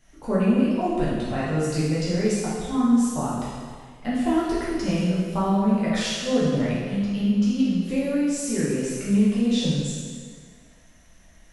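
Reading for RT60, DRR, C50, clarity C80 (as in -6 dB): 1.8 s, -9.5 dB, -2.0 dB, 0.5 dB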